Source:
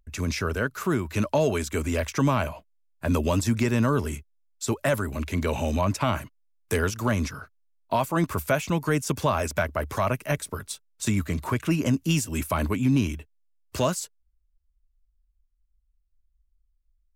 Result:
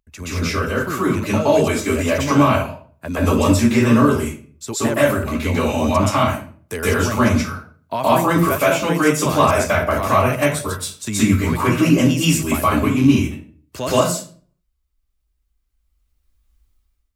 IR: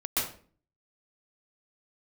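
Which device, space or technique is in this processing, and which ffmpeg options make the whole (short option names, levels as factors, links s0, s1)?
far laptop microphone: -filter_complex "[1:a]atrim=start_sample=2205[s0];[0:a][s0]afir=irnorm=-1:irlink=0,highpass=f=120:p=1,dynaudnorm=f=980:g=3:m=5.62,asettb=1/sr,asplit=3[s1][s2][s3];[s1]atrim=end=8.494[s4];[s2]atrim=start=8.49:end=9.26,asetpts=PTS-STARTPTS,afade=t=in:d=0.004:c=qsin,afade=t=out:st=0.766:d=0.004:c=qsin,lowshelf=f=140:g=-10.5[s5];[s3]atrim=start=9.256[s6];[s4][s5]acrossfade=d=0.004:c1=hsin:c2=qsin[s7];[s7][s6]acrossfade=d=0.004:c1=qsin:c2=hsin,volume=0.891"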